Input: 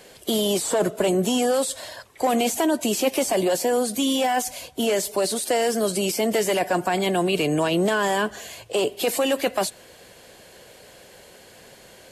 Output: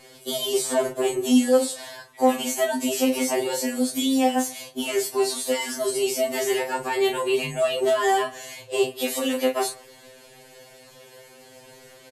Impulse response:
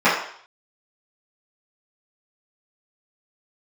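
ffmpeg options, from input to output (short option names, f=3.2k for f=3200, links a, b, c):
-filter_complex "[0:a]aecho=1:1:20|35:0.355|0.398,asplit=2[a][b];[1:a]atrim=start_sample=2205[c];[b][c]afir=irnorm=-1:irlink=0,volume=-37dB[d];[a][d]amix=inputs=2:normalize=0,afftfilt=real='re*2.45*eq(mod(b,6),0)':imag='im*2.45*eq(mod(b,6),0)':win_size=2048:overlap=0.75"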